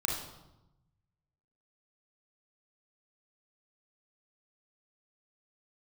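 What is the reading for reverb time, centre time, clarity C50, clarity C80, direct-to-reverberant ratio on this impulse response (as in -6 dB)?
0.95 s, 51 ms, 2.5 dB, 6.0 dB, -2.5 dB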